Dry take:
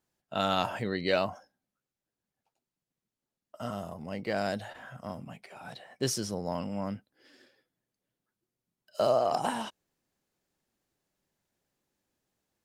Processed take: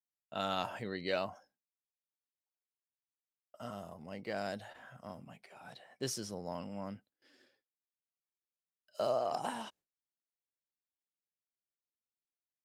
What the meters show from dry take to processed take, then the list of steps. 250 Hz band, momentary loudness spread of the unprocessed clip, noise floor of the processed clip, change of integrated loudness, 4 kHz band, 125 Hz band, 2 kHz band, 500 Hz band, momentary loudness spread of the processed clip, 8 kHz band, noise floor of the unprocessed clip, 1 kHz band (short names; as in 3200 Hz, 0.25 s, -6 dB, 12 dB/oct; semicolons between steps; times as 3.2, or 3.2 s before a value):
-8.5 dB, 17 LU, under -85 dBFS, -7.5 dB, -7.0 dB, -9.5 dB, -7.0 dB, -7.5 dB, 18 LU, -7.0 dB, under -85 dBFS, -7.0 dB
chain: gate with hold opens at -52 dBFS; low shelf 200 Hz -3.5 dB; gain -7 dB